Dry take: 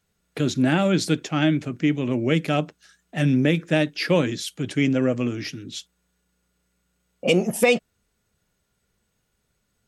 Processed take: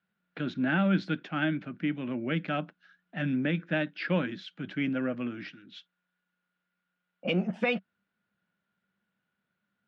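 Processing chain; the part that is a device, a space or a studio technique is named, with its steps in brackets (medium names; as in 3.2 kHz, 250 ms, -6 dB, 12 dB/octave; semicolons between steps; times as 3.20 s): kitchen radio (cabinet simulation 180–3500 Hz, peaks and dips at 190 Hz +9 dB, 430 Hz -8 dB, 1.5 kHz +9 dB); 5.52–7.25 s: bass shelf 400 Hz -10 dB; trim -8.5 dB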